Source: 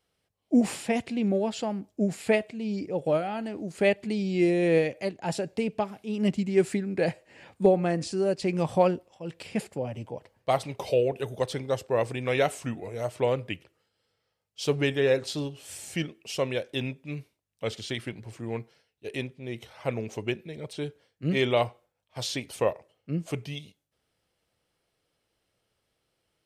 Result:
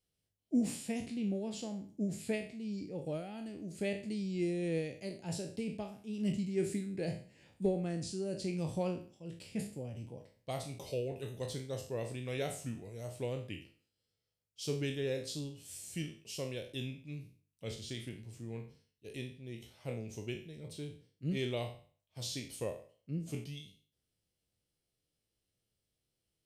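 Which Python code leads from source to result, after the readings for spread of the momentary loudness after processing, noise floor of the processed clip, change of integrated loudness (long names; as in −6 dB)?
12 LU, below −85 dBFS, −11.0 dB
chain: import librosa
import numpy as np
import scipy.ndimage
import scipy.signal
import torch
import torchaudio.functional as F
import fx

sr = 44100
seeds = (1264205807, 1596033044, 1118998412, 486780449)

y = fx.spec_trails(x, sr, decay_s=0.44)
y = fx.peak_eq(y, sr, hz=1100.0, db=-15.0, octaves=2.8)
y = y * 10.0 ** (-5.5 / 20.0)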